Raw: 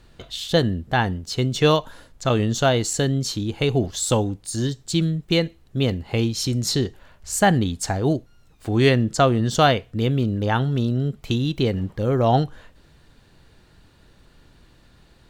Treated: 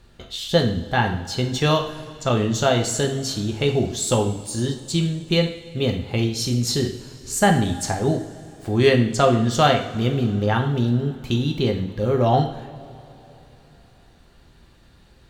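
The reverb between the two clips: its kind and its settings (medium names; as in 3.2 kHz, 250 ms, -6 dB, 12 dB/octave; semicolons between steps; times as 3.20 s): two-slope reverb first 0.55 s, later 3.5 s, from -18 dB, DRR 2.5 dB; trim -1.5 dB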